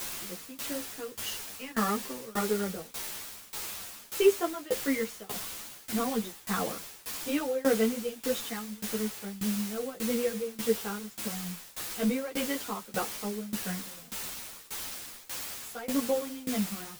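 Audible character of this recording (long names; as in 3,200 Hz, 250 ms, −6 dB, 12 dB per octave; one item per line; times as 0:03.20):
a quantiser's noise floor 6 bits, dither triangular
tremolo saw down 1.7 Hz, depth 95%
a shimmering, thickened sound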